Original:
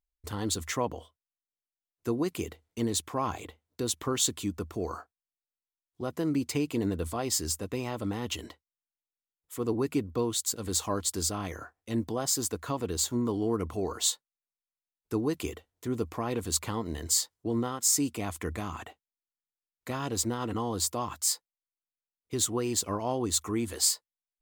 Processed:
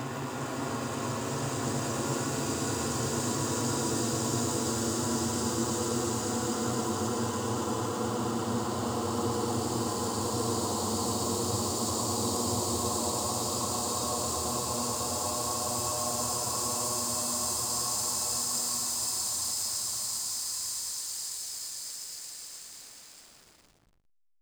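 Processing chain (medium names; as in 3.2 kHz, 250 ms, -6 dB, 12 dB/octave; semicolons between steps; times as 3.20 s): Paulstretch 13×, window 1.00 s, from 19.87 s; hysteresis with a dead band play -41 dBFS; bit-crushed delay 112 ms, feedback 80%, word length 9-bit, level -8 dB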